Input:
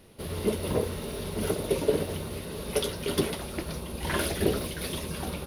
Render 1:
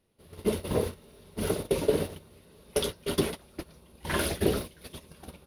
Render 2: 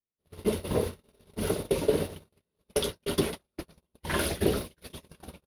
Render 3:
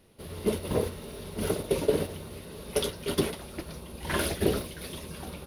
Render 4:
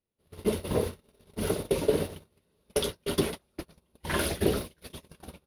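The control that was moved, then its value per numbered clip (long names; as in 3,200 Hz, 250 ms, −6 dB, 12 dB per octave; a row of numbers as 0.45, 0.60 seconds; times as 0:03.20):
noise gate, range: −19, −48, −6, −35 decibels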